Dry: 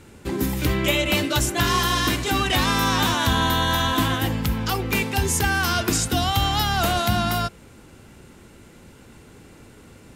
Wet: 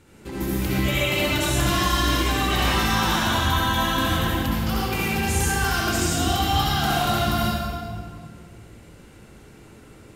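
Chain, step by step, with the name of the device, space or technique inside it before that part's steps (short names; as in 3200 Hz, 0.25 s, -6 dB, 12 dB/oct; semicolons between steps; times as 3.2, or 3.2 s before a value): stairwell (reverb RT60 2.0 s, pre-delay 60 ms, DRR -6.5 dB); gain -7.5 dB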